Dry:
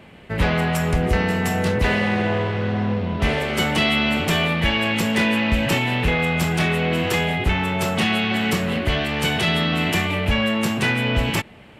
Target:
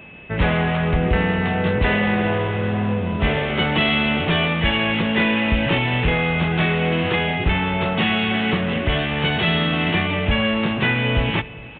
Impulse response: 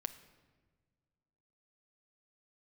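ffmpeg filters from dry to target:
-filter_complex "[0:a]aeval=exprs='val(0)+0.00708*sin(2*PI*2600*n/s)':channel_layout=same,aecho=1:1:407|814|1221:0.0794|0.0342|0.0147,asplit=2[link_01][link_02];[1:a]atrim=start_sample=2205[link_03];[link_02][link_03]afir=irnorm=-1:irlink=0,volume=-1.5dB[link_04];[link_01][link_04]amix=inputs=2:normalize=0,aresample=8000,aresample=44100,volume=-3.5dB"

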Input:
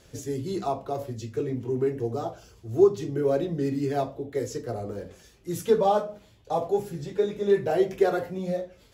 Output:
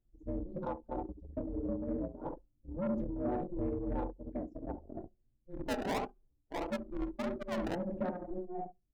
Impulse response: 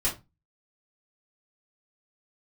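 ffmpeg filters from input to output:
-filter_complex "[0:a]equalizer=frequency=140:width_type=o:width=0.39:gain=11,asplit=3[link_01][link_02][link_03];[link_01]afade=type=out:start_time=5.49:duration=0.02[link_04];[link_02]acrusher=samples=32:mix=1:aa=0.000001:lfo=1:lforange=19.2:lforate=1.6,afade=type=in:start_time=5.49:duration=0.02,afade=type=out:start_time=7.74:duration=0.02[link_05];[link_03]afade=type=in:start_time=7.74:duration=0.02[link_06];[link_04][link_05][link_06]amix=inputs=3:normalize=0,aeval=exprs='val(0)*sin(2*PI*180*n/s)':channel_layout=same,flanger=delay=8.3:depth=3.6:regen=-73:speed=0.72:shape=sinusoidal,asplit=2[link_07][link_08];[link_08]adelay=68,lowpass=frequency=930:poles=1,volume=-4.5dB,asplit=2[link_09][link_10];[link_10]adelay=68,lowpass=frequency=930:poles=1,volume=0.33,asplit=2[link_11][link_12];[link_12]adelay=68,lowpass=frequency=930:poles=1,volume=0.33,asplit=2[link_13][link_14];[link_14]adelay=68,lowpass=frequency=930:poles=1,volume=0.33[link_15];[link_07][link_09][link_11][link_13][link_15]amix=inputs=5:normalize=0,asoftclip=type=tanh:threshold=-23.5dB,tremolo=f=3:d=0.59,alimiter=level_in=4.5dB:limit=-24dB:level=0:latency=1:release=102,volume=-4.5dB,anlmdn=1.58,volume=1dB"

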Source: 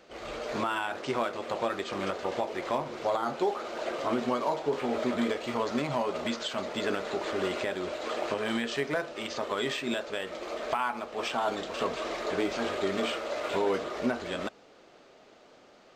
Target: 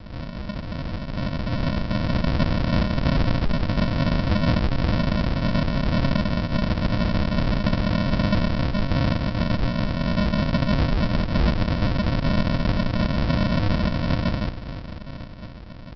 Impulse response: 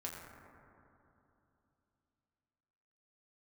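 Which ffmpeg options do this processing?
-filter_complex "[0:a]acrossover=split=450[link_01][link_02];[link_01]alimiter=level_in=7dB:limit=-24dB:level=0:latency=1,volume=-7dB[link_03];[link_03][link_02]amix=inputs=2:normalize=0,asplit=2[link_04][link_05];[link_05]highpass=frequency=720:poles=1,volume=36dB,asoftclip=type=tanh:threshold=-16.5dB[link_06];[link_04][link_06]amix=inputs=2:normalize=0,lowpass=frequency=1700:poles=1,volume=-6dB,highpass=frequency=220:width=0.5412,highpass=frequency=220:width=1.3066,equalizer=frequency=790:width_type=q:width=4:gain=6,equalizer=frequency=1300:width_type=q:width=4:gain=-3,equalizer=frequency=1900:width_type=q:width=4:gain=8,lowpass=frequency=3700:width=0.5412,lowpass=frequency=3700:width=1.3066,dynaudnorm=framelen=340:gausssize=9:maxgain=11.5dB,aresample=11025,acrusher=samples=27:mix=1:aa=0.000001,aresample=44100,volume=-8dB"

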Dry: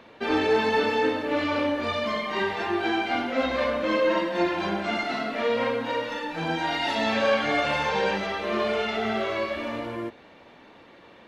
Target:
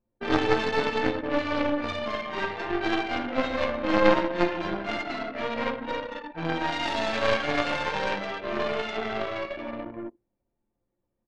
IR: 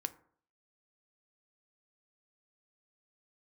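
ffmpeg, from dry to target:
-filter_complex "[0:a]aecho=1:1:12|65:0.266|0.2,asplit=2[link_01][link_02];[1:a]atrim=start_sample=2205[link_03];[link_02][link_03]afir=irnorm=-1:irlink=0,volume=8dB[link_04];[link_01][link_04]amix=inputs=2:normalize=0,anlmdn=3980,aeval=exprs='1.26*(cos(1*acos(clip(val(0)/1.26,-1,1)))-cos(1*PI/2))+0.501*(cos(2*acos(clip(val(0)/1.26,-1,1)))-cos(2*PI/2))+0.251*(cos(3*acos(clip(val(0)/1.26,-1,1)))-cos(3*PI/2))':channel_layout=same,volume=-7dB"

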